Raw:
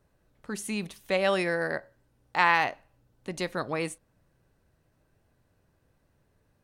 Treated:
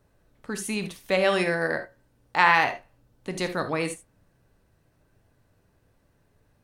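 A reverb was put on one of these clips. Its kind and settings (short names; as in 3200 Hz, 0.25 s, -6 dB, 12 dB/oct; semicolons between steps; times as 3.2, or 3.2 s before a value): non-linear reverb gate 0.1 s flat, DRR 7.5 dB; gain +3 dB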